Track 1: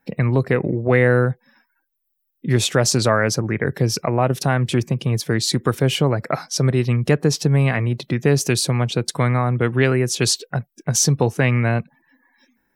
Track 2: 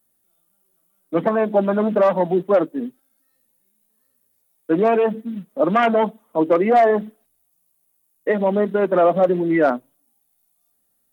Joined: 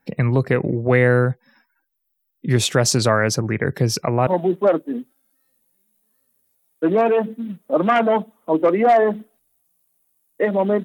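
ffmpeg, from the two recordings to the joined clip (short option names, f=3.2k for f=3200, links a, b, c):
-filter_complex "[0:a]apad=whole_dur=10.84,atrim=end=10.84,atrim=end=4.272[a];[1:a]atrim=start=2.138:end=8.71[b];[a][b]acrossfade=d=0.004:c1=hsin:c2=hsin"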